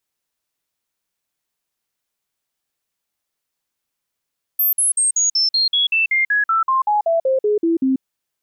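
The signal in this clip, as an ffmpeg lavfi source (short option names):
-f lavfi -i "aevalsrc='0.211*clip(min(mod(t,0.19),0.14-mod(t,0.19))/0.005,0,1)*sin(2*PI*13400*pow(2,-floor(t/0.19)/3)*mod(t,0.19))':d=3.42:s=44100"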